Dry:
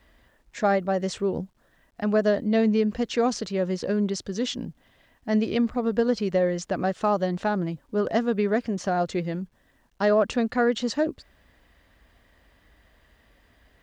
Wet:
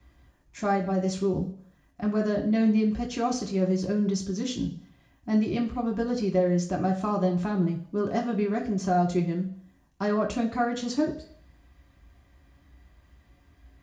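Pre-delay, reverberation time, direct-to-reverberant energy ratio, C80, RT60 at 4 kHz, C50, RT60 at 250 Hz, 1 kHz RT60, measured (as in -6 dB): 3 ms, 0.55 s, -0.5 dB, 14.5 dB, 0.65 s, 10.5 dB, 0.55 s, 0.55 s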